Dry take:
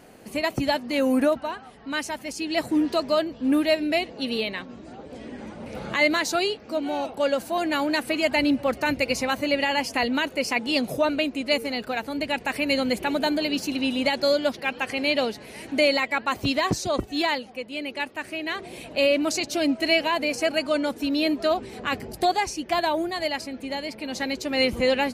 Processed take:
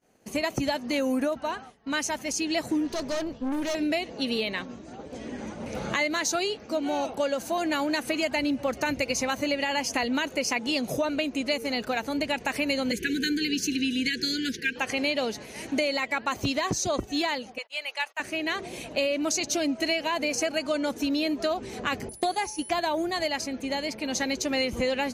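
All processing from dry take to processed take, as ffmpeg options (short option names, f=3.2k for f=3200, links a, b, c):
-filter_complex "[0:a]asettb=1/sr,asplit=3[a][b][c];[a]atrim=end=2.874[d];[b]atrim=start=2.87:end=3.75,asetpts=PTS-STARTPTS,afade=t=in:d=0.004:c=qsin,afade=t=out:st=0.876:d=0.004:c=qsin,lowshelf=f=200:g=4,aeval=exprs='(tanh(20*val(0)+0.4)-tanh(0.4))/20':c=same,tremolo=f=280:d=0.333[e];[c]atrim=start=3.746[f];[d][e]acrossfade=d=0.004:c1=hsin:c2=qsin[g];[g][f]acrossfade=d=0.004:c1=qsin:c2=hsin,asettb=1/sr,asplit=3[h][i][j];[h]atrim=end=12.914[k];[i]atrim=start=12.91:end=14.76,asetpts=PTS-STARTPTS,afade=t=in:d=0.004:c=qsin,afade=t=out:st=1.846:d=0.004:c=qsin,asuperstop=centerf=850:order=20:qfactor=0.83,equalizer=f=1.6k:w=6.3:g=5.5[l];[j]atrim=start=14.756[m];[k][l]acrossfade=d=0.004:c1=hsin:c2=qsin[n];[n][m]acrossfade=d=0.004:c1=qsin:c2=hsin,asettb=1/sr,asplit=3[o][p][q];[o]atrim=end=17.584[r];[p]atrim=start=17.58:end=18.2,asetpts=PTS-STARTPTS,afade=t=in:d=0.004:c=qsin,afade=t=out:st=0.616:d=0.004:c=qsin,highpass=f=710:w=0.5412,highpass=f=710:w=1.3066,agate=range=-31dB:threshold=-51dB:ratio=16:release=100:detection=peak[s];[q]atrim=start=18.196[t];[r][s]acrossfade=d=0.004:c1=hsin:c2=qsin[u];[u][t]acrossfade=d=0.004:c1=qsin:c2=hsin,asettb=1/sr,asplit=3[v][w][x];[v]atrim=end=22.094[y];[w]atrim=start=22.09:end=22.7,asetpts=PTS-STARTPTS,afade=t=in:d=0.004:c=qsin,afade=t=out:st=0.606:d=0.004:c=qsin,agate=range=-11dB:threshold=-31dB:ratio=16:release=100:detection=peak,bandreject=f=428.6:t=h:w=4,bandreject=f=857.2:t=h:w=4,bandreject=f=1.2858k:t=h:w=4,bandreject=f=1.7144k:t=h:w=4,bandreject=f=2.143k:t=h:w=4,bandreject=f=2.5716k:t=h:w=4,bandreject=f=3.0002k:t=h:w=4,bandreject=f=3.4288k:t=h:w=4,bandreject=f=3.8574k:t=h:w=4,bandreject=f=4.286k:t=h:w=4,bandreject=f=4.7146k:t=h:w=4,bandreject=f=5.1432k:t=h:w=4,bandreject=f=5.5718k:t=h:w=4,bandreject=f=6.0004k:t=h:w=4,bandreject=f=6.429k:t=h:w=4,bandreject=f=6.8576k:t=h:w=4,bandreject=f=7.2862k:t=h:w=4,bandreject=f=7.7148k:t=h:w=4,bandreject=f=8.1434k:t=h:w=4,bandreject=f=8.572k:t=h:w=4,bandreject=f=9.0006k:t=h:w=4,bandreject=f=9.4292k:t=h:w=4,bandreject=f=9.8578k:t=h:w=4,bandreject=f=10.2864k:t=h:w=4,bandreject=f=10.715k:t=h:w=4,bandreject=f=11.1436k:t=h:w=4,bandreject=f=11.5722k:t=h:w=4,bandreject=f=12.0008k:t=h:w=4,bandreject=f=12.4294k:t=h:w=4,bandreject=f=12.858k:t=h:w=4,bandreject=f=13.2866k:t=h:w=4,bandreject=f=13.7152k:t=h:w=4,bandreject=f=14.1438k:t=h:w=4,bandreject=f=14.5724k:t=h:w=4,bandreject=f=15.001k:t=h:w=4,bandreject=f=15.4296k:t=h:w=4,bandreject=f=15.8582k:t=h:w=4,bandreject=f=16.2868k:t=h:w=4,aeval=exprs='val(0)+0.00794*sin(2*PI*10000*n/s)':c=same[z];[x]atrim=start=22.696[aa];[y][z]acrossfade=d=0.004:c1=hsin:c2=qsin[ab];[ab][aa]acrossfade=d=0.004:c1=qsin:c2=hsin,agate=range=-33dB:threshold=-38dB:ratio=3:detection=peak,equalizer=f=6.3k:w=4.8:g=10.5,acompressor=threshold=-25dB:ratio=6,volume=1.5dB"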